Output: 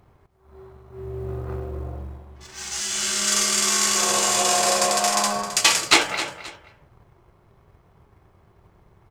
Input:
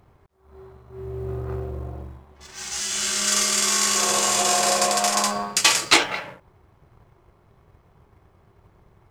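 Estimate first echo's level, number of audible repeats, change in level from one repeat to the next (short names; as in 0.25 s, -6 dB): -12.5 dB, 2, -10.5 dB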